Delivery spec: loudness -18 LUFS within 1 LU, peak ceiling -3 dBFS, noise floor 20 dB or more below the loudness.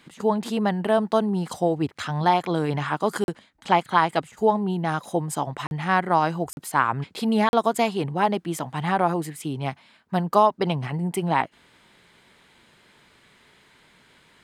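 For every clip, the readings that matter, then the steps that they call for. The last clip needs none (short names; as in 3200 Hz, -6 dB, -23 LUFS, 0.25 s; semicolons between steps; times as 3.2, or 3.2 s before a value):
dropouts 4; longest dropout 41 ms; loudness -24.0 LUFS; peak -4.5 dBFS; loudness target -18.0 LUFS
-> interpolate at 3.24/5.67/6.53/7.49, 41 ms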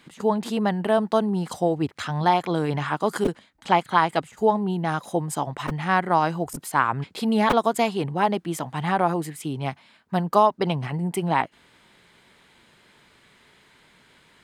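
dropouts 0; loudness -24.0 LUFS; peak -4.5 dBFS; loudness target -18.0 LUFS
-> gain +6 dB; limiter -3 dBFS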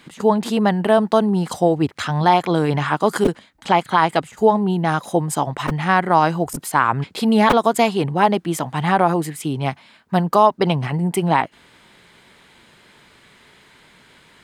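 loudness -18.5 LUFS; peak -3.0 dBFS; noise floor -52 dBFS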